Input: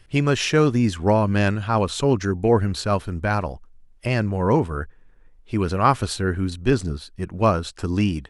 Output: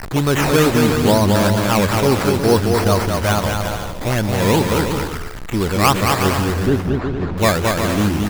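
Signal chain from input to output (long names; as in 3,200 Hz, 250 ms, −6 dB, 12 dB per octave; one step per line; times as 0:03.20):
converter with a step at zero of −22.5 dBFS
low-shelf EQ 110 Hz −4.5 dB
sample-and-hold swept by an LFO 12×, swing 60% 2.3 Hz
0:06.44–0:07.38: head-to-tape spacing loss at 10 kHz 31 dB
on a send: bouncing-ball delay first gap 220 ms, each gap 0.65×, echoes 5
on the sum: level +1.5 dB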